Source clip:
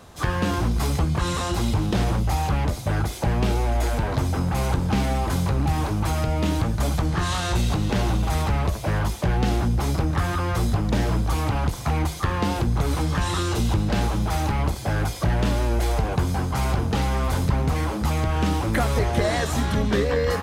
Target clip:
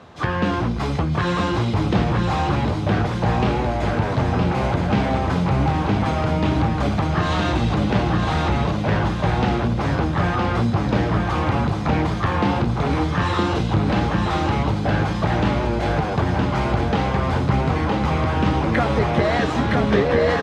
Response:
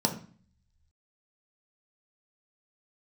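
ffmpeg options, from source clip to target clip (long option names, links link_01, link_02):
-filter_complex "[0:a]highpass=100,lowpass=3400,asplit=2[link_01][link_02];[link_02]aecho=0:1:965|1930|2895|3860|4825:0.668|0.287|0.124|0.0531|0.0228[link_03];[link_01][link_03]amix=inputs=2:normalize=0,volume=3.5dB"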